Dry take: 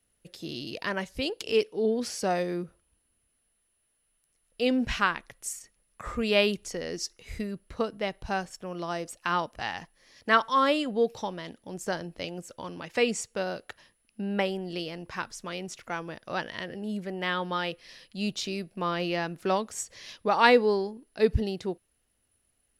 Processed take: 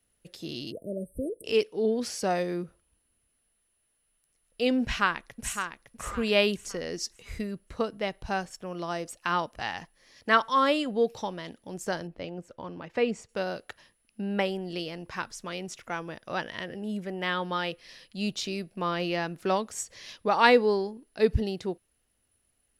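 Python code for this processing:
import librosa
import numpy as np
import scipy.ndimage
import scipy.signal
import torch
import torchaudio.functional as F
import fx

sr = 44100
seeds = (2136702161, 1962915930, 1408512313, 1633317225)

y = fx.spec_erase(x, sr, start_s=0.71, length_s=0.74, low_hz=680.0, high_hz=8200.0)
y = fx.echo_throw(y, sr, start_s=4.82, length_s=0.72, ms=560, feedback_pct=30, wet_db=-7.5)
y = fx.lowpass(y, sr, hz=1400.0, slope=6, at=(12.07, 13.29))
y = fx.notch(y, sr, hz=4400.0, q=12.0, at=(15.75, 17.24))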